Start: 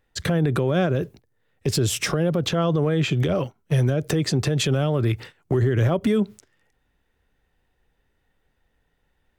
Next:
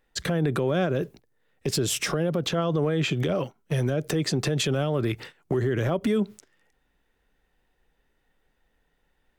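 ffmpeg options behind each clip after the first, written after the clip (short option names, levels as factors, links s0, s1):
-af "equalizer=f=92:w=1.8:g=-11.5,alimiter=limit=0.158:level=0:latency=1:release=111"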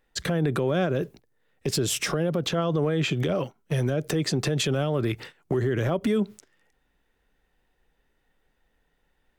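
-af anull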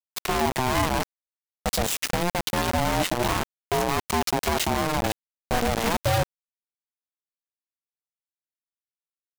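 -af "acrusher=bits=3:mix=0:aa=0.000001,aeval=exprs='val(0)*sin(2*PI*450*n/s+450*0.25/0.25*sin(2*PI*0.25*n/s))':c=same,volume=1.33"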